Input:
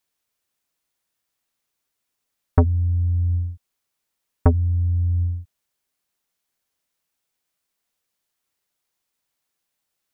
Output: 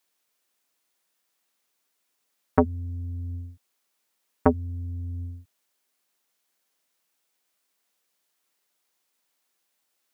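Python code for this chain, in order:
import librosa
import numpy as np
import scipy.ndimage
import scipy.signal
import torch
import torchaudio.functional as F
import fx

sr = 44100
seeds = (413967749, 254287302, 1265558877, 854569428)

y = scipy.signal.sosfilt(scipy.signal.butter(2, 220.0, 'highpass', fs=sr, output='sos'), x)
y = F.gain(torch.from_numpy(y), 3.5).numpy()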